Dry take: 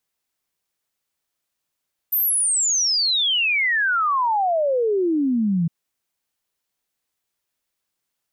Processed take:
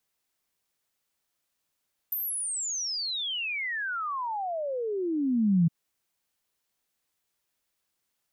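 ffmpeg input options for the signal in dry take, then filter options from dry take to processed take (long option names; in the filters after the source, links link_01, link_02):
-f lavfi -i "aevalsrc='0.141*clip(min(t,3.56-t)/0.01,0,1)*sin(2*PI*14000*3.56/log(160/14000)*(exp(log(160/14000)*t/3.56)-1))':duration=3.56:sample_rate=44100"
-filter_complex "[0:a]acrossover=split=200[link_01][link_02];[link_02]acompressor=threshold=-32dB:ratio=6[link_03];[link_01][link_03]amix=inputs=2:normalize=0"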